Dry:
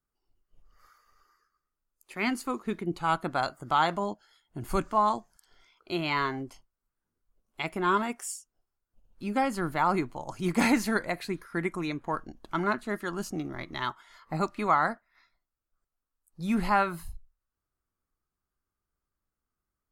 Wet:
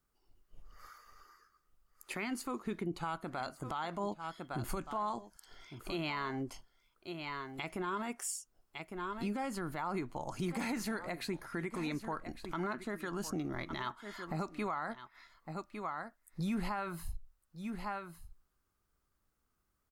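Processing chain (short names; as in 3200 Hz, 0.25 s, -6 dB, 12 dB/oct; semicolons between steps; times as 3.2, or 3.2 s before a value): echo 1.156 s -18 dB; compressor 2.5:1, threshold -43 dBFS, peak gain reduction 16 dB; limiter -34 dBFS, peak gain reduction 8.5 dB; gain +6 dB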